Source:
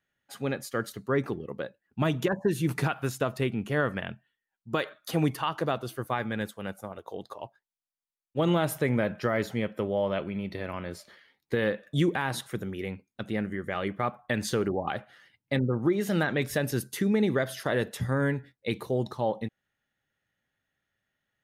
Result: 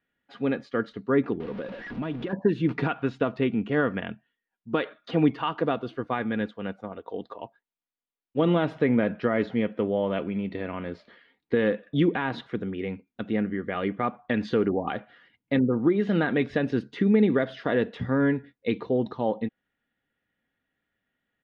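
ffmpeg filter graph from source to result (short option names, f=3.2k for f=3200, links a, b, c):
-filter_complex "[0:a]asettb=1/sr,asplit=3[a][b][c];[a]atrim=end=1.404[d];[b]atrim=start=1.4:end=2.33,asetpts=PTS-STARTPTS,afade=t=in:d=0.004:c=qsin,afade=t=out:st=0.926:d=0.004:c=qsin,aeval=exprs='val(0)+0.5*0.0211*sgn(val(0))':c=same,highshelf=f=7.3k:g=-9,acompressor=threshold=-35dB:ratio=2.5:attack=3.2:release=140:knee=1:detection=peak[e];[c]atrim=start=2.326[f];[d][e]acrossfade=d=0.004:c1=hsin:c2=qsin[g];[g][f]acrossfade=d=0.004:c1=qsin:c2=hsin,lowpass=f=3.6k:w=0.5412,lowpass=f=3.6k:w=1.3066,equalizer=f=310:w=1.4:g=6.5,aecho=1:1:4.2:0.33"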